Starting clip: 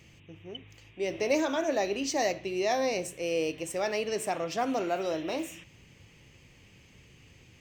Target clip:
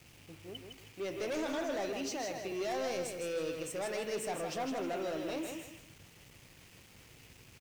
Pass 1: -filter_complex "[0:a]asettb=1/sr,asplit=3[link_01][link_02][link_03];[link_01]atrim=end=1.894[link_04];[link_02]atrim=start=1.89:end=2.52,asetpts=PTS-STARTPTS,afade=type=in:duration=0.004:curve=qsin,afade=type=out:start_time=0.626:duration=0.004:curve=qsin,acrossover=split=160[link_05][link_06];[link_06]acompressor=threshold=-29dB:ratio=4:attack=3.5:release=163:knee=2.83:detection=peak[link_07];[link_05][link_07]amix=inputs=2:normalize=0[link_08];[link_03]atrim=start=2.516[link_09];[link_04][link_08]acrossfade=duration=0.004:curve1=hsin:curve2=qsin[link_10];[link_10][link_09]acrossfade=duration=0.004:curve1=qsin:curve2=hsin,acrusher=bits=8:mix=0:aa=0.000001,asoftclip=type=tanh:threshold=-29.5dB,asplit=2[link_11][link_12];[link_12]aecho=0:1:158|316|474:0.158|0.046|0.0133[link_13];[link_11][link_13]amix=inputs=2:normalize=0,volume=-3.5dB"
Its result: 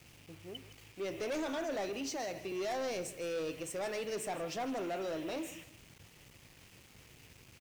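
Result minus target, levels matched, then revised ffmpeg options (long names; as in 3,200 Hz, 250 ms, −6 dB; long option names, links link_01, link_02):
echo-to-direct −10.5 dB
-filter_complex "[0:a]asettb=1/sr,asplit=3[link_01][link_02][link_03];[link_01]atrim=end=1.894[link_04];[link_02]atrim=start=1.89:end=2.52,asetpts=PTS-STARTPTS,afade=type=in:duration=0.004:curve=qsin,afade=type=out:start_time=0.626:duration=0.004:curve=qsin,acrossover=split=160[link_05][link_06];[link_06]acompressor=threshold=-29dB:ratio=4:attack=3.5:release=163:knee=2.83:detection=peak[link_07];[link_05][link_07]amix=inputs=2:normalize=0[link_08];[link_03]atrim=start=2.516[link_09];[link_04][link_08]acrossfade=duration=0.004:curve1=hsin:curve2=qsin[link_10];[link_10][link_09]acrossfade=duration=0.004:curve1=qsin:curve2=hsin,acrusher=bits=8:mix=0:aa=0.000001,asoftclip=type=tanh:threshold=-29.5dB,asplit=2[link_11][link_12];[link_12]aecho=0:1:158|316|474|632:0.531|0.154|0.0446|0.0129[link_13];[link_11][link_13]amix=inputs=2:normalize=0,volume=-3.5dB"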